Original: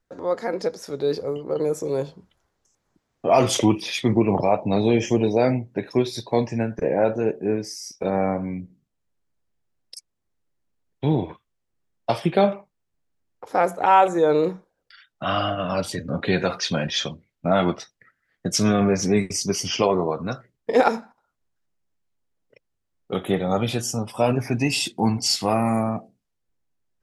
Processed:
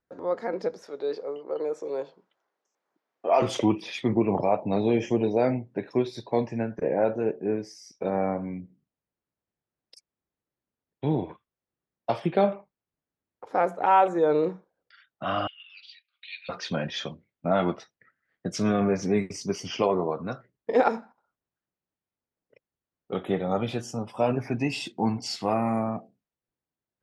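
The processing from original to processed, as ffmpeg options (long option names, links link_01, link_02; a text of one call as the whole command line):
ffmpeg -i in.wav -filter_complex "[0:a]asettb=1/sr,asplit=3[link_01][link_02][link_03];[link_01]atrim=end=0.874[link_04];[link_02]atrim=start=0.87:end=3.42,asetpts=PTS-STARTPTS,afade=type=in:duration=0.004:curve=qsin,afade=type=out:start_time=2.546:duration=0.004:curve=qsin,highpass=410,lowpass=7400[link_05];[link_03]atrim=start=3.416[link_06];[link_04][link_05]acrossfade=duration=0.004:curve1=hsin:curve2=qsin[link_07];[link_07][link_06]acrossfade=duration=0.004:curve1=qsin:curve2=hsin,asettb=1/sr,asplit=3[link_08][link_09][link_10];[link_08]atrim=end=15.474[link_11];[link_09]atrim=start=15.47:end=16.49,asetpts=PTS-STARTPTS,afade=type=in:duration=0.004:curve=qsin,afade=type=out:start_time=1.016:duration=0.004:curve=qsin,asuperpass=centerf=3300:order=8:qfactor=1.4[link_12];[link_10]atrim=start=16.486[link_13];[link_11][link_12]acrossfade=duration=0.004:curve1=hsin:curve2=qsin[link_14];[link_14][link_13]acrossfade=duration=0.004:curve1=qsin:curve2=hsin,highpass=frequency=140:poles=1,aemphasis=mode=reproduction:type=75fm,volume=-4dB" out.wav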